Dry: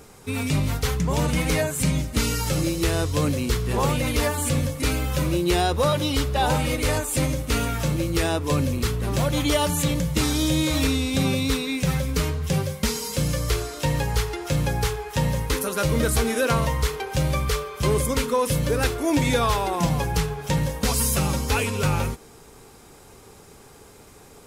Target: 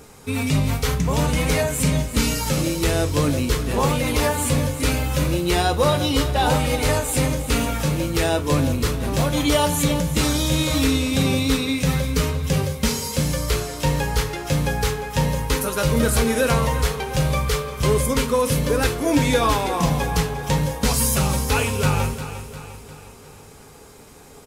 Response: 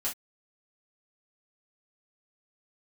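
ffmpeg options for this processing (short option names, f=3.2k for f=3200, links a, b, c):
-filter_complex "[0:a]aecho=1:1:352|704|1056|1408|1760:0.251|0.128|0.0653|0.0333|0.017,asplit=2[a][b];[1:a]atrim=start_sample=2205[c];[b][c]afir=irnorm=-1:irlink=0,volume=-9dB[d];[a][d]amix=inputs=2:normalize=0"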